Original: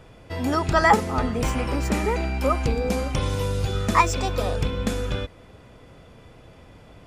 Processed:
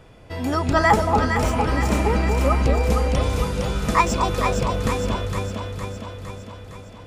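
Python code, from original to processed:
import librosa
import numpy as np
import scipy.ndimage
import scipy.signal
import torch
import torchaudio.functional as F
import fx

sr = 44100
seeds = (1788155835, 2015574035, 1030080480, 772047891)

y = fx.echo_alternate(x, sr, ms=230, hz=1000.0, feedback_pct=77, wet_db=-2.5)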